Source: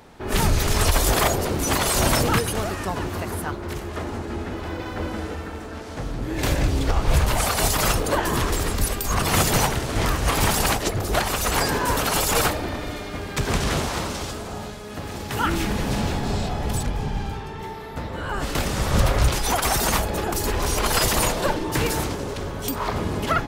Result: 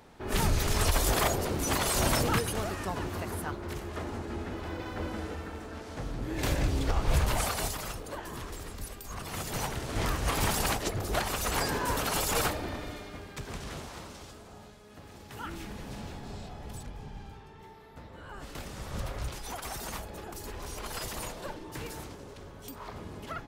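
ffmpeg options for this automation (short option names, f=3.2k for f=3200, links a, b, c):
-af "volume=2.5dB,afade=t=out:st=7.37:d=0.47:silence=0.298538,afade=t=in:st=9.43:d=0.57:silence=0.334965,afade=t=out:st=12.74:d=0.73:silence=0.354813"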